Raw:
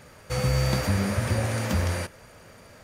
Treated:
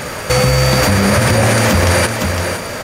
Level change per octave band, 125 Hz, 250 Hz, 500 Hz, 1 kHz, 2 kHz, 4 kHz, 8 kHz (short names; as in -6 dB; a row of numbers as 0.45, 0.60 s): +11.0, +13.5, +16.5, +17.0, +17.5, +17.0, +17.5 dB